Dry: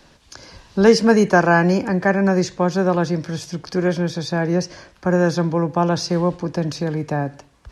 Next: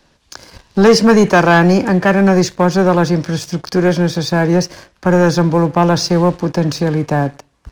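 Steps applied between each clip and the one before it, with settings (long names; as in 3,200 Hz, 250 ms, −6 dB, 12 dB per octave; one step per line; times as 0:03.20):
leveller curve on the samples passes 2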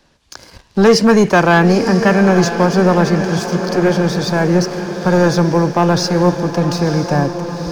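feedback delay with all-pass diffusion 963 ms, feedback 60%, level −9 dB
level −1 dB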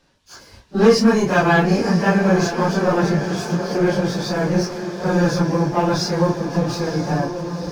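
random phases in long frames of 100 ms
level −5 dB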